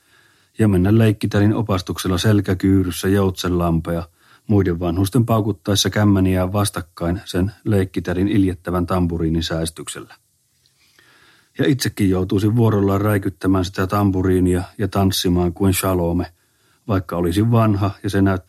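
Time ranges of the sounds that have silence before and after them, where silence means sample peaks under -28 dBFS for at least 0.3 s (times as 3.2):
0.59–4.04
4.49–10.02
11.59–16.26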